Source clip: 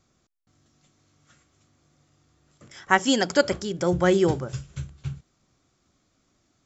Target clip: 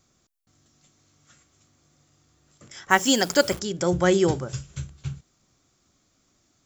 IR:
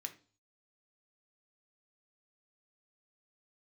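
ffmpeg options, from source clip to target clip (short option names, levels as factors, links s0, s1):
-filter_complex "[0:a]asplit=3[s0][s1][s2];[s0]afade=t=out:st=2.9:d=0.02[s3];[s1]acrusher=bits=8:dc=4:mix=0:aa=0.000001,afade=t=in:st=2.9:d=0.02,afade=t=out:st=3.58:d=0.02[s4];[s2]afade=t=in:st=3.58:d=0.02[s5];[s3][s4][s5]amix=inputs=3:normalize=0,highshelf=f=5700:g=9.5"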